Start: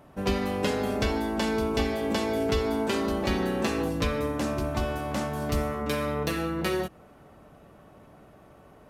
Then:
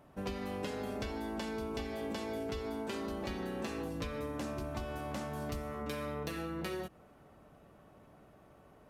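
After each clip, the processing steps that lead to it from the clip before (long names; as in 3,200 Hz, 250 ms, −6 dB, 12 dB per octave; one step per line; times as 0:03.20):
downward compressor, threshold −28 dBFS, peak gain reduction 7.5 dB
level −7 dB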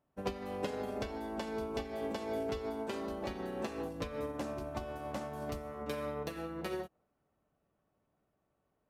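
dynamic equaliser 620 Hz, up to +6 dB, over −54 dBFS, Q 0.71
expander for the loud parts 2.5 to 1, over −46 dBFS
level +1 dB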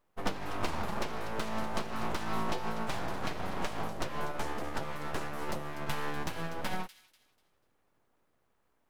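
full-wave rectification
delay with a high-pass on its return 245 ms, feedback 31%, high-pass 3,300 Hz, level −11.5 dB
level +6.5 dB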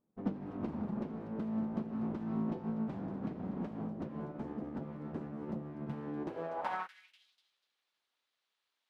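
band-pass filter sweep 220 Hz → 3,800 Hz, 0:06.07–0:07.28
level +6.5 dB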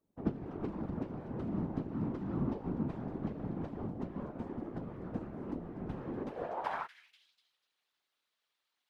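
random phases in short frames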